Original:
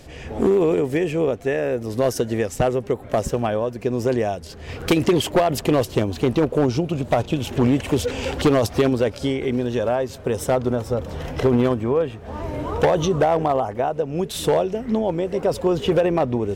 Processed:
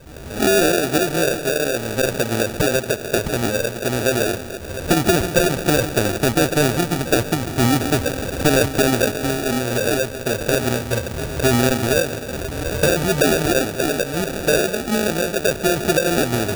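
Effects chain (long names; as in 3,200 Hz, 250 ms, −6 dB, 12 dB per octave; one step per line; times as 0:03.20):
spectral magnitudes quantised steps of 15 dB
echo with a time of its own for lows and highs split 430 Hz, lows 146 ms, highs 682 ms, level −10 dB
convolution reverb RT60 2.6 s, pre-delay 105 ms, DRR 19 dB
decimation without filtering 42×
high-shelf EQ 5,300 Hz +6 dB
level +1 dB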